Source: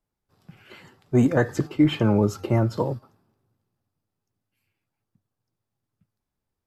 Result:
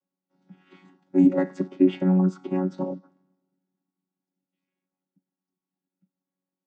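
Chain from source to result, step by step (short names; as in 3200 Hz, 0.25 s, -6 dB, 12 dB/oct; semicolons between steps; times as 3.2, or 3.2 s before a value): chord vocoder bare fifth, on F#3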